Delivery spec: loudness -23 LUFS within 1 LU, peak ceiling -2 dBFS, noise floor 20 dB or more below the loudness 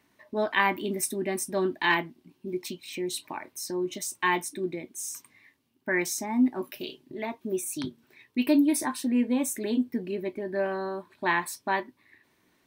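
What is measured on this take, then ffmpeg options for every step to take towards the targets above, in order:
loudness -29.0 LUFS; peak level -10.5 dBFS; loudness target -23.0 LUFS
-> -af "volume=2"

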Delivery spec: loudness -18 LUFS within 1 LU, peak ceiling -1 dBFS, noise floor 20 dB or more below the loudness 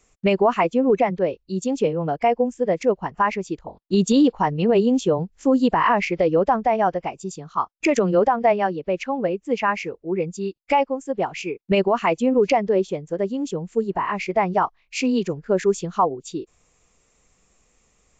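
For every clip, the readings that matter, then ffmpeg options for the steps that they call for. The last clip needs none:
loudness -21.5 LUFS; peak level -9.0 dBFS; loudness target -18.0 LUFS
-> -af "volume=1.5"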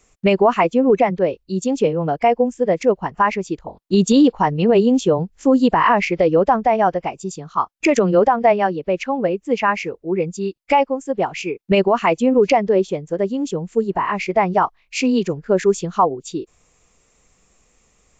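loudness -18.0 LUFS; peak level -5.0 dBFS; noise floor -61 dBFS

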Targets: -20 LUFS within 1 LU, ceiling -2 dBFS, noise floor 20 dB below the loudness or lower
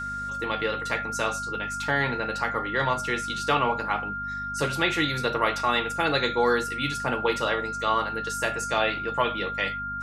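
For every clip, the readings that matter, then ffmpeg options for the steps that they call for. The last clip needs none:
hum 50 Hz; highest harmonic 250 Hz; hum level -39 dBFS; steady tone 1.4 kHz; tone level -30 dBFS; loudness -26.0 LUFS; peak level -8.0 dBFS; loudness target -20.0 LUFS
-> -af "bandreject=f=50:t=h:w=4,bandreject=f=100:t=h:w=4,bandreject=f=150:t=h:w=4,bandreject=f=200:t=h:w=4,bandreject=f=250:t=h:w=4"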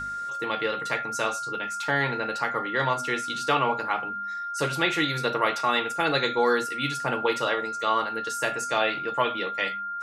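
hum not found; steady tone 1.4 kHz; tone level -30 dBFS
-> -af "bandreject=f=1400:w=30"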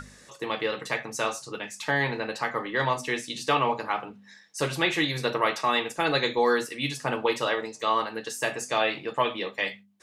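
steady tone not found; loudness -27.5 LUFS; peak level -8.0 dBFS; loudness target -20.0 LUFS
-> -af "volume=2.37,alimiter=limit=0.794:level=0:latency=1"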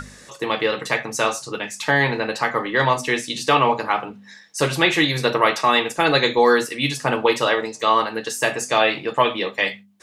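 loudness -20.0 LUFS; peak level -2.0 dBFS; noise floor -46 dBFS

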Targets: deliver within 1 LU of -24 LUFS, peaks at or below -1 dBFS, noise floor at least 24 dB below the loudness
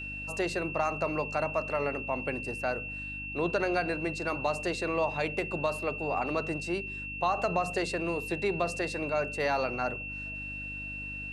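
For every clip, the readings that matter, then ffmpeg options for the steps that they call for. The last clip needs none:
hum 50 Hz; highest harmonic 300 Hz; hum level -42 dBFS; steady tone 2.7 kHz; tone level -37 dBFS; loudness -31.5 LUFS; peak level -15.5 dBFS; loudness target -24.0 LUFS
-> -af "bandreject=f=50:t=h:w=4,bandreject=f=100:t=h:w=4,bandreject=f=150:t=h:w=4,bandreject=f=200:t=h:w=4,bandreject=f=250:t=h:w=4,bandreject=f=300:t=h:w=4"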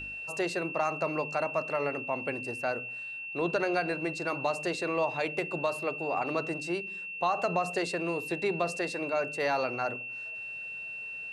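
hum not found; steady tone 2.7 kHz; tone level -37 dBFS
-> -af "bandreject=f=2700:w=30"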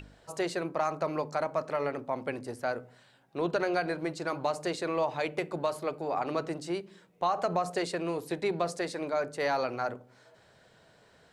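steady tone not found; loudness -32.5 LUFS; peak level -16.5 dBFS; loudness target -24.0 LUFS
-> -af "volume=2.66"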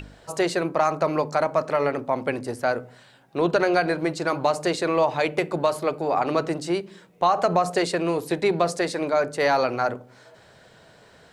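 loudness -24.0 LUFS; peak level -8.0 dBFS; noise floor -53 dBFS

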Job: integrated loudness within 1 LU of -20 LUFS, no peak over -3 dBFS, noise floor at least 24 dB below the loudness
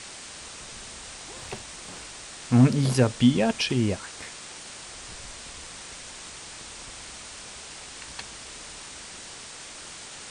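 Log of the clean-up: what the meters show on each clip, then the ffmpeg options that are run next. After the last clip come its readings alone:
noise floor -42 dBFS; noise floor target -54 dBFS; loudness -29.5 LUFS; peak level -8.0 dBFS; loudness target -20.0 LUFS
-> -af "afftdn=nr=12:nf=-42"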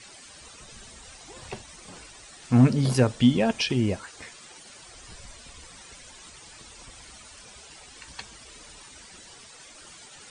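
noise floor -48 dBFS; loudness -22.5 LUFS; peak level -8.5 dBFS; loudness target -20.0 LUFS
-> -af "volume=1.33"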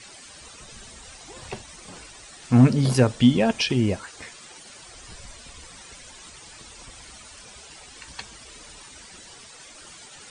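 loudness -20.0 LUFS; peak level -6.0 dBFS; noise floor -46 dBFS

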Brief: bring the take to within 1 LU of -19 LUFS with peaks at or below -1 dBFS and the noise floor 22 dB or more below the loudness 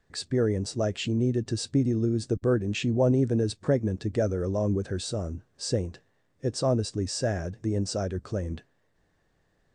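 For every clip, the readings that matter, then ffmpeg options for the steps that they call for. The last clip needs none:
loudness -28.0 LUFS; peak level -11.0 dBFS; loudness target -19.0 LUFS
-> -af "volume=2.82"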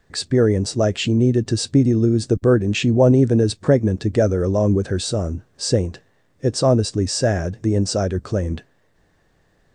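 loudness -19.0 LUFS; peak level -2.0 dBFS; noise floor -61 dBFS

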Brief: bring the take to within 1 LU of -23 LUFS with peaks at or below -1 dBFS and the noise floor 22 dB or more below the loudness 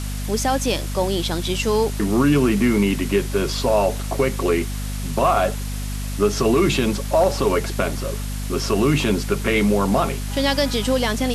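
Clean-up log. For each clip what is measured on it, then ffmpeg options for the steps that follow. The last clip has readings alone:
hum 50 Hz; highest harmonic 250 Hz; hum level -24 dBFS; noise floor -27 dBFS; noise floor target -43 dBFS; loudness -20.5 LUFS; peak level -5.5 dBFS; loudness target -23.0 LUFS
-> -af "bandreject=f=50:t=h:w=6,bandreject=f=100:t=h:w=6,bandreject=f=150:t=h:w=6,bandreject=f=200:t=h:w=6,bandreject=f=250:t=h:w=6"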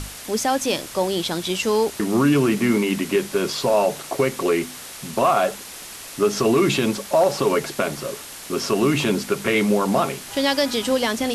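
hum not found; noise floor -37 dBFS; noise floor target -43 dBFS
-> -af "afftdn=nr=6:nf=-37"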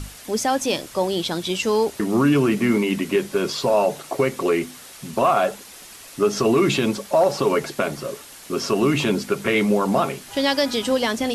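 noise floor -42 dBFS; noise floor target -43 dBFS
-> -af "afftdn=nr=6:nf=-42"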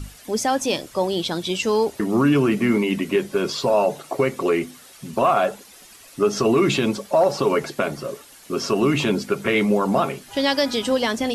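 noise floor -47 dBFS; loudness -21.5 LUFS; peak level -7.0 dBFS; loudness target -23.0 LUFS
-> -af "volume=0.841"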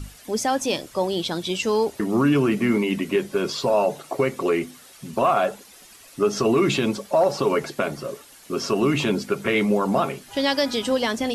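loudness -23.0 LUFS; peak level -8.5 dBFS; noise floor -48 dBFS

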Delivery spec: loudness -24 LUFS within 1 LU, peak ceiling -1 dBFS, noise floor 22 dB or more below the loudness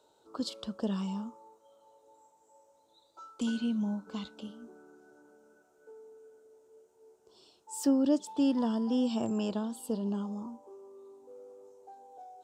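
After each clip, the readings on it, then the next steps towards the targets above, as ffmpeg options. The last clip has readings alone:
loudness -32.5 LUFS; peak level -17.0 dBFS; loudness target -24.0 LUFS
-> -af "volume=2.66"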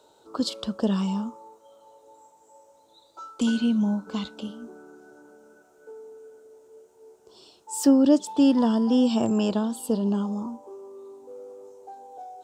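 loudness -24.0 LUFS; peak level -8.5 dBFS; noise floor -59 dBFS

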